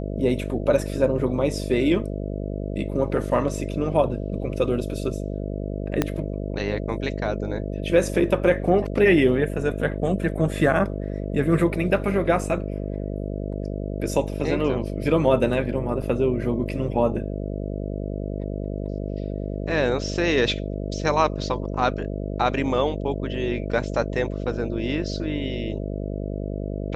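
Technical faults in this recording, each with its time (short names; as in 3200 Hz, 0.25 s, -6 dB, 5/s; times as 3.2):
buzz 50 Hz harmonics 13 -29 dBFS
6.02 pop -7 dBFS
16.02 gap 4.2 ms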